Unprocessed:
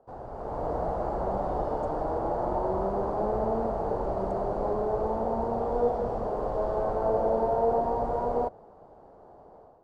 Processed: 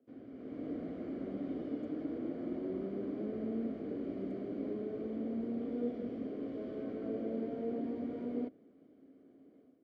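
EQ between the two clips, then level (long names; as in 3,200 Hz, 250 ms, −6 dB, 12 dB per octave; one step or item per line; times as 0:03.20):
formant filter i
high-pass filter 64 Hz
+8.0 dB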